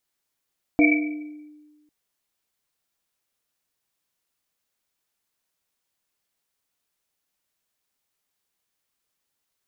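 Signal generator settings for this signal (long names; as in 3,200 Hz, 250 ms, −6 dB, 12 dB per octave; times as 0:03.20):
drum after Risset, pitch 300 Hz, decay 1.45 s, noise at 2,300 Hz, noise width 100 Hz, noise 35%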